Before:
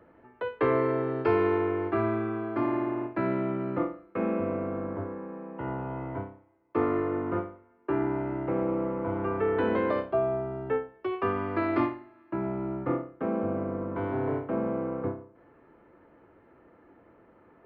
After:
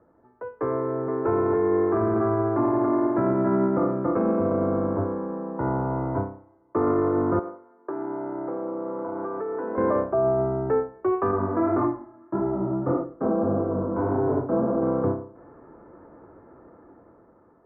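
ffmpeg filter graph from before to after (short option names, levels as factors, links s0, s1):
-filter_complex "[0:a]asettb=1/sr,asplit=3[s0][s1][s2];[s0]atrim=end=0.804[s3];[s1]atrim=start=0.8:end=4.34,asetpts=PTS-STARTPTS,afade=t=in:d=0.004:c=qsin,afade=t=out:st=3.536:d=0.004:c=qsin,lowpass=3300,aecho=1:1:280:0.631,atrim=end_sample=156114[s4];[s2]atrim=start=4.336[s5];[s3][s4]acrossfade=d=0.004:c1=hsin:c2=qsin[s6];[s6][s5]acrossfade=d=0.004:c1=qsin:c2=hsin,asettb=1/sr,asplit=3[s7][s8][s9];[s7]atrim=end=7.394[s10];[s8]atrim=start=7.39:end=9.78,asetpts=PTS-STARTPTS,afade=t=in:d=0.004:c=qsin,afade=t=out:st=2.386:d=0.004:c=qsin,highpass=290,lowpass=2500,acompressor=threshold=0.0158:ratio=6:attack=3.2:release=140:knee=1:detection=peak[s11];[s9]atrim=start=9.776[s12];[s10][s11]acrossfade=d=0.004:c1=hsin:c2=qsin[s13];[s13][s12]acrossfade=d=0.004:c1=qsin:c2=hsin,asettb=1/sr,asplit=3[s14][s15][s16];[s14]atrim=end=11.314[s17];[s15]atrim=start=11.31:end=14.82,asetpts=PTS-STARTPTS,afade=t=in:d=0.004:c=qsin,afade=t=out:st=3.506:d=0.004:c=qsin,lowpass=1700,flanger=delay=17.5:depth=7.1:speed=1.7[s18];[s16]atrim=start=14.816[s19];[s17][s18]acrossfade=d=0.004:c1=hsin:c2=qsin[s20];[s20][s19]acrossfade=d=0.004:c1=qsin:c2=hsin,lowpass=f=1400:w=0.5412,lowpass=f=1400:w=1.3066,dynaudnorm=f=400:g=7:m=4.22,alimiter=limit=0.251:level=0:latency=1:release=18,volume=0.708"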